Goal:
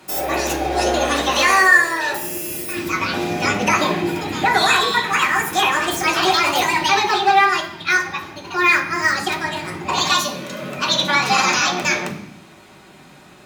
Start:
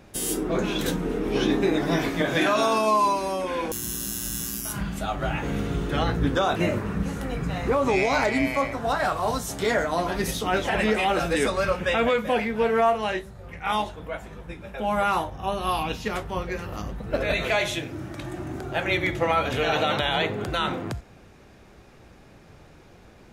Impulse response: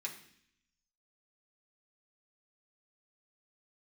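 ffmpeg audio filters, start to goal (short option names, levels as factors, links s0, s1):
-filter_complex "[0:a]asetrate=76440,aresample=44100[s0];[1:a]atrim=start_sample=2205,asetrate=42777,aresample=44100[s1];[s0][s1]afir=irnorm=-1:irlink=0,volume=2.51"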